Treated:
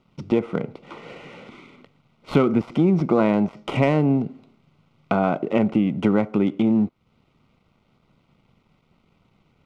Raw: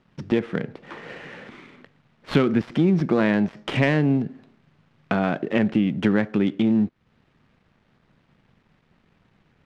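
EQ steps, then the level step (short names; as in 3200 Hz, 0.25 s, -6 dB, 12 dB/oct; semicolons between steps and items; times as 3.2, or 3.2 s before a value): dynamic EQ 3800 Hz, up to -6 dB, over -44 dBFS, Q 0.96; dynamic EQ 870 Hz, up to +5 dB, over -36 dBFS, Q 0.72; Butterworth band-stop 1700 Hz, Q 3.4; 0.0 dB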